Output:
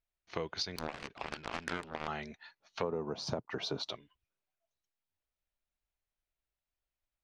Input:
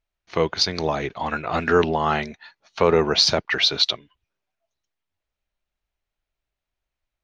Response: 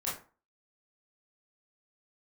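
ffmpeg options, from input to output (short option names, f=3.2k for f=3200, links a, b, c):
-filter_complex "[0:a]asplit=3[a][b][c];[a]afade=t=out:st=2.82:d=0.02[d];[b]equalizer=f=125:t=o:w=1:g=10,equalizer=f=250:t=o:w=1:g=9,equalizer=f=500:t=o:w=1:g=6,equalizer=f=1k:t=o:w=1:g=9,equalizer=f=2k:t=o:w=1:g=-9,equalizer=f=4k:t=o:w=1:g=-6,afade=t=in:st=2.82:d=0.02,afade=t=out:st=3.9:d=0.02[e];[c]afade=t=in:st=3.9:d=0.02[f];[d][e][f]amix=inputs=3:normalize=0,acompressor=threshold=-24dB:ratio=8,asettb=1/sr,asplit=3[g][h][i];[g]atrim=end=0.764[j];[h]atrim=start=0.76:end=2.08,asetpts=PTS-STARTPTS,afade=t=in:d=0.004:c=qsin,afade=t=out:st=1.316:d=0.004:c=qsin,aeval=exprs='0.251*(cos(1*acos(clip(val(0)/0.251,-1,1)))-cos(1*PI/2))+0.0562*(cos(7*acos(clip(val(0)/0.251,-1,1)))-cos(7*PI/2))':c=same[k];[i]atrim=start=2.076[l];[j][k]acrossfade=d=0.004:c1=hsin:c2=qsin[m];[m][l]acrossfade=d=0.004:c1=qsin:c2=hsin,volume=-9dB"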